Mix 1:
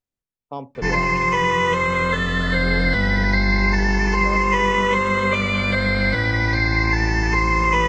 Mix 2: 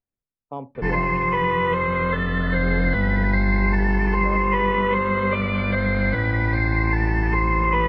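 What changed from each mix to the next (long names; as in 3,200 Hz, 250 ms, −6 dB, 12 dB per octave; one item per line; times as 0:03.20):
master: add high-frequency loss of the air 440 metres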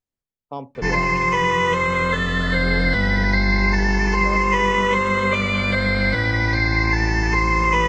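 master: remove high-frequency loss of the air 440 metres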